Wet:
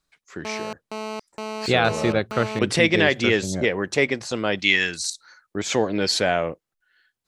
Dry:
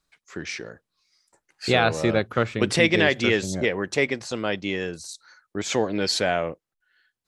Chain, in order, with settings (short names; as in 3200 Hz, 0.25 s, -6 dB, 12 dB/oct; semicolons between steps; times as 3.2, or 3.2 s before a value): 4.59–5.1 ten-band EQ 125 Hz -6 dB, 500 Hz -8 dB, 2000 Hz +10 dB, 4000 Hz +9 dB, 8000 Hz +8 dB; vocal rider 2 s; 0.45–2.59 GSM buzz -33 dBFS; gain +2 dB